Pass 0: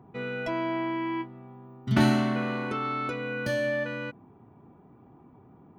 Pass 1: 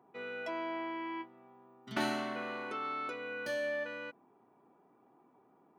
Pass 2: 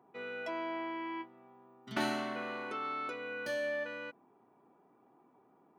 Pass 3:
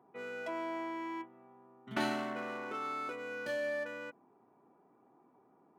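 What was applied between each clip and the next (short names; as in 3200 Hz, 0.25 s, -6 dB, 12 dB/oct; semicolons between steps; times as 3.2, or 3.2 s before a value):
HPF 380 Hz 12 dB/oct; gain -6.5 dB
nothing audible
Wiener smoothing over 9 samples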